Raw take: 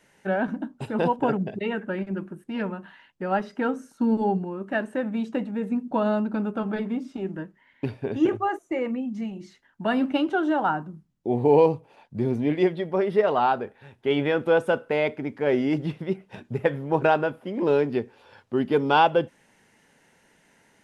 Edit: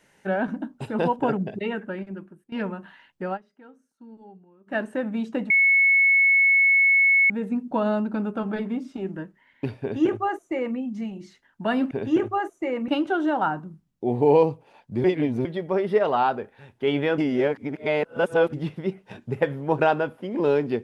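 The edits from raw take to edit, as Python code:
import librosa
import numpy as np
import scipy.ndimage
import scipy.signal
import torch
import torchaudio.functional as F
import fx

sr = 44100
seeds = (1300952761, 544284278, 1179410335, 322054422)

y = fx.edit(x, sr, fx.fade_out_to(start_s=1.65, length_s=0.87, floor_db=-17.5),
    fx.fade_down_up(start_s=3.25, length_s=1.54, db=-23.5, fade_s=0.13, curve='qsin'),
    fx.insert_tone(at_s=5.5, length_s=1.8, hz=2200.0, db=-14.5),
    fx.duplicate(start_s=8.0, length_s=0.97, to_s=10.11),
    fx.reverse_span(start_s=12.27, length_s=0.41),
    fx.reverse_span(start_s=14.41, length_s=1.35), tone=tone)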